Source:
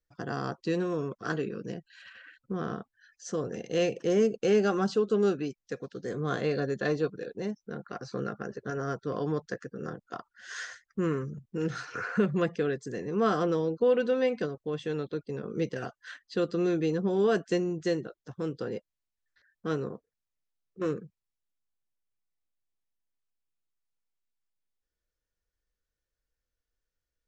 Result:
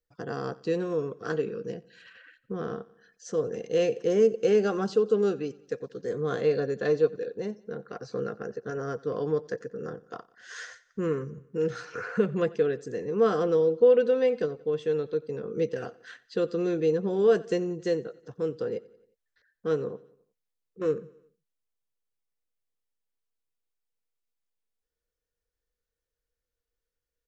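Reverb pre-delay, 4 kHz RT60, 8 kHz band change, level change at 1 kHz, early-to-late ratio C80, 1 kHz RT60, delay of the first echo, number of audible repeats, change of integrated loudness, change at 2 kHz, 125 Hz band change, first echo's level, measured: no reverb audible, no reverb audible, can't be measured, −1.5 dB, no reverb audible, no reverb audible, 90 ms, 3, +3.0 dB, −2.0 dB, −2.0 dB, −22.0 dB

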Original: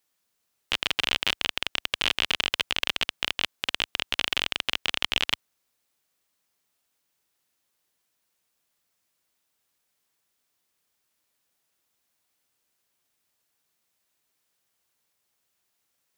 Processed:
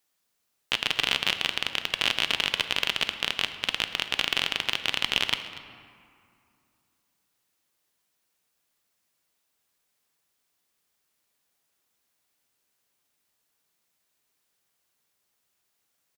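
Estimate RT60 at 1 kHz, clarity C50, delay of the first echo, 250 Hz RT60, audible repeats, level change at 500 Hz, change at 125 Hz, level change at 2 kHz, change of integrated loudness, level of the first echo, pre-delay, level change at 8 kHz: 2.5 s, 10.0 dB, 239 ms, 3.0 s, 1, +0.5 dB, +0.5 dB, +0.5 dB, +0.5 dB, −18.0 dB, 3 ms, +0.5 dB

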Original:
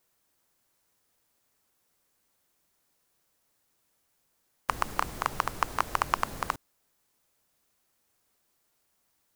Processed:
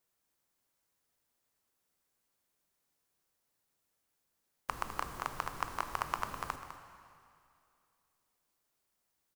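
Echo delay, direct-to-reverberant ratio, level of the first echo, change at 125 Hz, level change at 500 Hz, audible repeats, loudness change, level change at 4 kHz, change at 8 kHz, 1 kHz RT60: 204 ms, 6.5 dB, −12.0 dB, −7.0 dB, −7.5 dB, 1, −7.5 dB, −8.0 dB, −7.5 dB, 2.5 s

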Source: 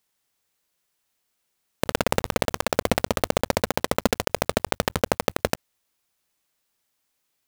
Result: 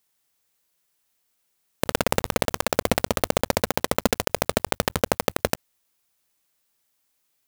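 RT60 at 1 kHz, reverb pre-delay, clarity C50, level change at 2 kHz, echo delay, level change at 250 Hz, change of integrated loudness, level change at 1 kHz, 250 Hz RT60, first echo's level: no reverb audible, no reverb audible, no reverb audible, 0.0 dB, no echo audible, 0.0 dB, +0.5 dB, 0.0 dB, no reverb audible, no echo audible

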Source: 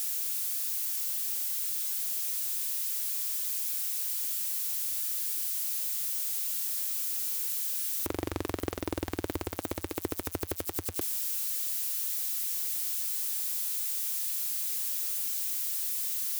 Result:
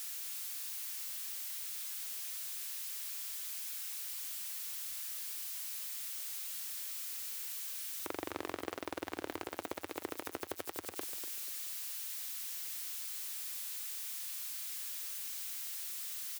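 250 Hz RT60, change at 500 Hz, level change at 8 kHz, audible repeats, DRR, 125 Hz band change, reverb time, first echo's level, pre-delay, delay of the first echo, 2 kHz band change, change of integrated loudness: no reverb audible, −6.0 dB, −8.5 dB, 3, no reverb audible, −18.5 dB, no reverb audible, −10.5 dB, no reverb audible, 244 ms, −2.5 dB, −9.5 dB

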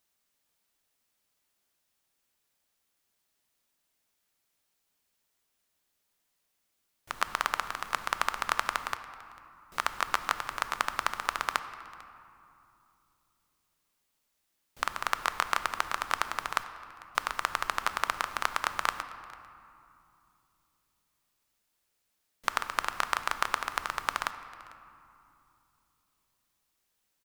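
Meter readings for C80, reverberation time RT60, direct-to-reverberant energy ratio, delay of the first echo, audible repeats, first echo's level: 12.0 dB, 2.6 s, 10.0 dB, 447 ms, 1, −22.5 dB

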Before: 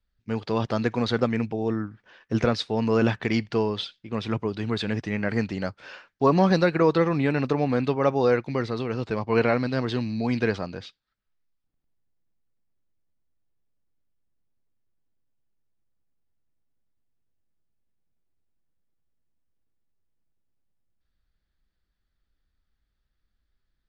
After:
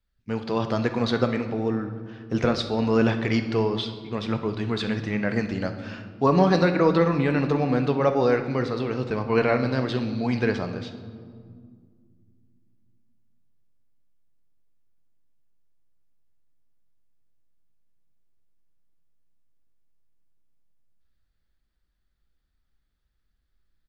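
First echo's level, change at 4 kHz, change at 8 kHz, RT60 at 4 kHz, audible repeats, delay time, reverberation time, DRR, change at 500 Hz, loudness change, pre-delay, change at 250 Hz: −17.0 dB, +0.5 dB, can't be measured, 1.2 s, 1, 67 ms, 2.0 s, 7.5 dB, +0.5 dB, +1.0 dB, 16 ms, +1.0 dB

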